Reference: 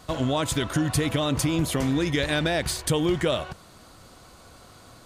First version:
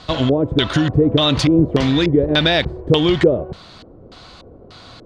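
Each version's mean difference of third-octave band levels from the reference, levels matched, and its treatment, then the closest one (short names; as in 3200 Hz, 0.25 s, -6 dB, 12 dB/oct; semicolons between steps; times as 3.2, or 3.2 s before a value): 8.0 dB: LFO low-pass square 1.7 Hz 430–4000 Hz; gain +7.5 dB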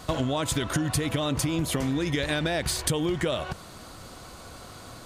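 3.5 dB: compressor, threshold -29 dBFS, peak gain reduction 10 dB; gain +5.5 dB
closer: second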